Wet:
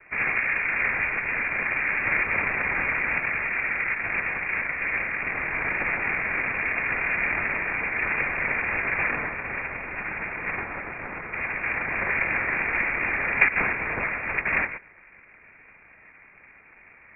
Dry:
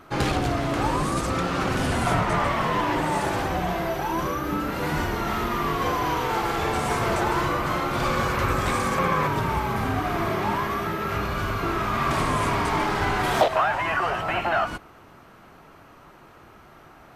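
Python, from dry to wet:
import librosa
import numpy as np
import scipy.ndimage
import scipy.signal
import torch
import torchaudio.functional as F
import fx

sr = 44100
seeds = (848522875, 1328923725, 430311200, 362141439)

y = fx.highpass(x, sr, hz=690.0, slope=12, at=(9.1, 11.33))
y = fx.noise_vocoder(y, sr, seeds[0], bands=2)
y = fx.freq_invert(y, sr, carrier_hz=2600)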